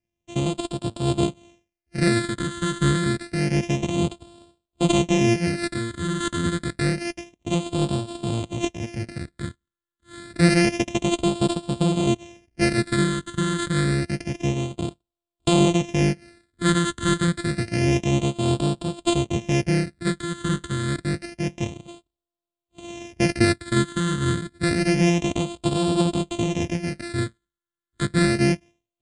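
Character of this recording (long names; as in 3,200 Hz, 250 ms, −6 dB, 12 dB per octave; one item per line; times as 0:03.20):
a buzz of ramps at a fixed pitch in blocks of 128 samples
phaser sweep stages 8, 0.28 Hz, lowest notch 730–1,900 Hz
MP3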